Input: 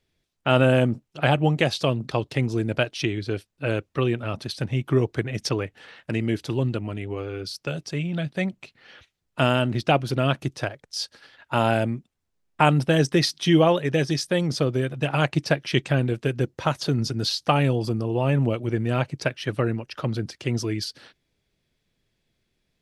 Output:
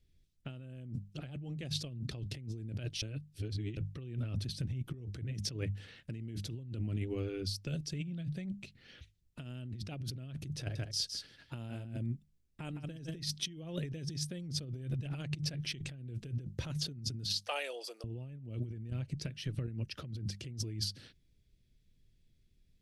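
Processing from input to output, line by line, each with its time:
0:03.02–0:03.77: reverse
0:04.47–0:04.94: downward compressor 2 to 1, threshold −36 dBFS
0:10.59–0:13.19: single-tap delay 162 ms −6.5 dB
0:17.35–0:18.04: Butterworth high-pass 520 Hz
0:18.90–0:19.68: downward compressor, threshold −33 dBFS
whole clip: guitar amp tone stack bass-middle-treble 10-0-1; mains-hum notches 50/100/150/200 Hz; compressor whose output falls as the input rises −49 dBFS, ratio −1; level +9 dB

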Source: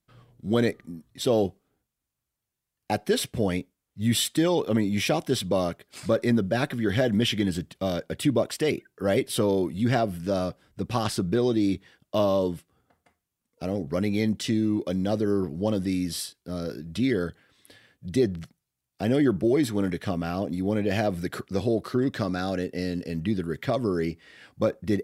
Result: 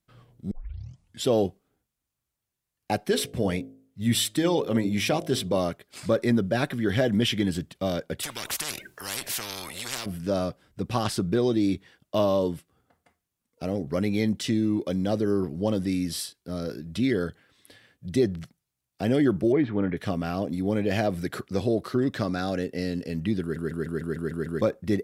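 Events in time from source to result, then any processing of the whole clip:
0:00.51: tape start 0.75 s
0:03.10–0:05.58: hum removal 53.28 Hz, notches 13
0:08.23–0:10.06: every bin compressed towards the loudest bin 10 to 1
0:19.52–0:19.97: low-pass filter 2,600 Hz 24 dB per octave
0:23.41: stutter in place 0.15 s, 8 plays

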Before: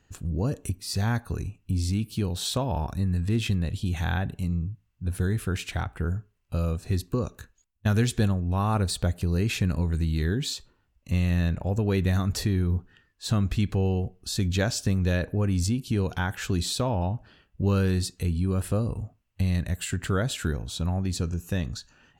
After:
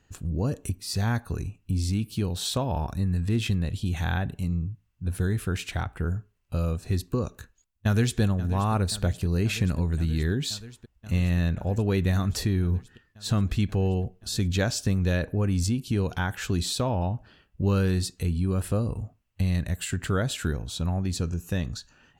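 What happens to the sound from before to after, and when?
0:07.31–0:08.20: delay throw 530 ms, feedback 85%, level −15 dB

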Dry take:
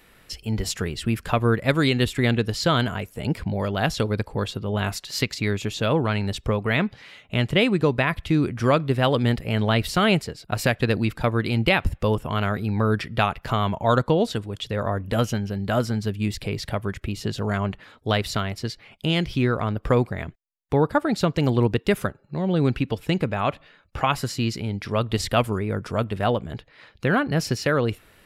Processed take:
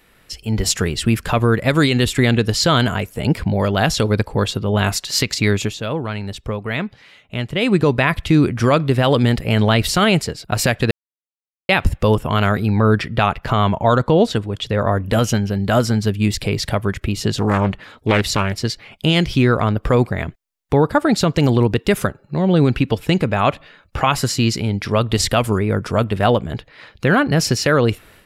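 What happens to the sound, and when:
0:05.62–0:07.75: duck −9.5 dB, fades 0.15 s
0:10.91–0:11.69: silence
0:12.79–0:14.88: high-shelf EQ 5,000 Hz −8 dB
0:17.35–0:18.60: highs frequency-modulated by the lows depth 0.5 ms
whole clip: dynamic equaliser 7,100 Hz, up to +4 dB, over −43 dBFS, Q 0.98; brickwall limiter −11.5 dBFS; automatic gain control gain up to 8.5 dB

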